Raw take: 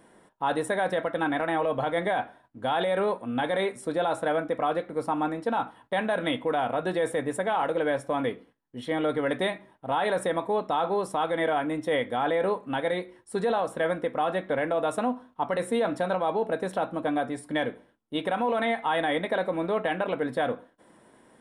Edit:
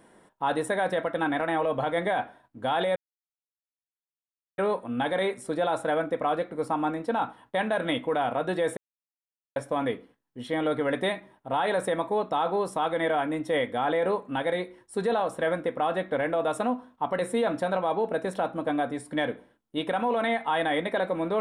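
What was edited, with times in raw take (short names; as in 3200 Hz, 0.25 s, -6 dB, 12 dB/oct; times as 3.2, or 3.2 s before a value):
2.96 insert silence 1.62 s
7.15–7.94 mute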